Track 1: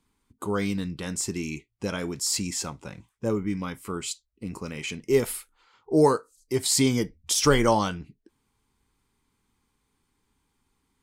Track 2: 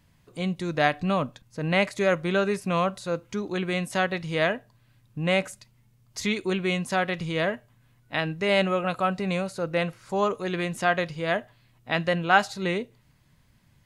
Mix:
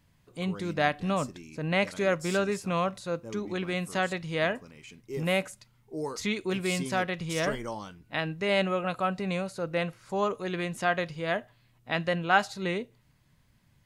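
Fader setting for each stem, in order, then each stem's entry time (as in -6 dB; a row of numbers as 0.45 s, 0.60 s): -15.5 dB, -3.5 dB; 0.00 s, 0.00 s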